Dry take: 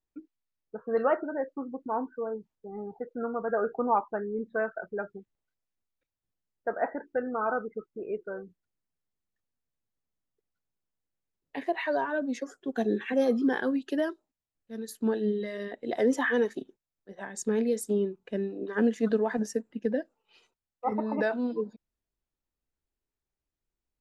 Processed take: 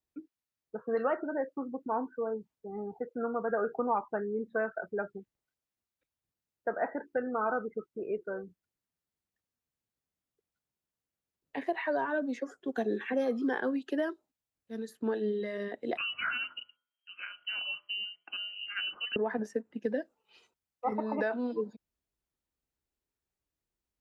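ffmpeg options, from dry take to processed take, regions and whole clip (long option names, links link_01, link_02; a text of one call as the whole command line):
ffmpeg -i in.wav -filter_complex "[0:a]asettb=1/sr,asplit=3[link_01][link_02][link_03];[link_01]atrim=end=15.974[link_04];[link_02]atrim=start=15.97:end=19.16,asetpts=PTS-STARTPTS,afade=type=in:duration=0.004:curve=qsin,afade=type=out:start_time=3.186:duration=0.004:curve=qsin,lowpass=frequency=2700:width_type=q:width=0.5098,lowpass=frequency=2700:width_type=q:width=0.6013,lowpass=frequency=2700:width_type=q:width=0.9,lowpass=frequency=2700:width_type=q:width=2.563,afreqshift=-3200,bandreject=frequency=84.92:width_type=h:width=4,bandreject=frequency=169.84:width_type=h:width=4,bandreject=frequency=254.76:width_type=h:width=4,bandreject=frequency=339.68:width_type=h:width=4,bandreject=frequency=424.6:width_type=h:width=4,bandreject=frequency=509.52:width_type=h:width=4,bandreject=frequency=594.44:width_type=h:width=4,bandreject=frequency=679.36:width_type=h:width=4,bandreject=frequency=764.28:width_type=h:width=4,bandreject=frequency=849.2:width_type=h:width=4,bandreject=frequency=934.12:width_type=h:width=4,bandreject=frequency=1019.04:width_type=h:width=4,bandreject=frequency=1103.96:width_type=h:width=4,bandreject=frequency=1188.88:width_type=h:width=4,bandreject=frequency=1273.8:width_type=h:width=4,bandreject=frequency=1358.72:width_type=h:width=4,bandreject=frequency=1443.64:width_type=h:width=4[link_05];[link_03]atrim=start=19.156[link_06];[link_04][link_05]acrossfade=duration=0.004:curve1=hsin:curve2=qsin[link_07];[link_07][link_06]acrossfade=duration=0.004:curve1=qsin:curve2=hsin,highpass=43,acrossover=split=300|1300|2600[link_08][link_09][link_10][link_11];[link_08]acompressor=threshold=-39dB:ratio=4[link_12];[link_09]acompressor=threshold=-29dB:ratio=4[link_13];[link_10]acompressor=threshold=-37dB:ratio=4[link_14];[link_11]acompressor=threshold=-58dB:ratio=4[link_15];[link_12][link_13][link_14][link_15]amix=inputs=4:normalize=0" out.wav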